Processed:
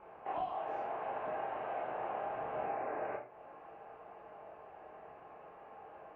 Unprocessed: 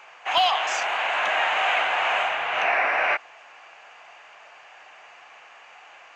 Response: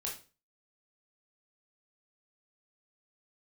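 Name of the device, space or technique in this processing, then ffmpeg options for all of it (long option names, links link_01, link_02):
television next door: -filter_complex "[0:a]acompressor=threshold=-33dB:ratio=5,lowpass=340[link_01];[1:a]atrim=start_sample=2205[link_02];[link_01][link_02]afir=irnorm=-1:irlink=0,volume=12.5dB"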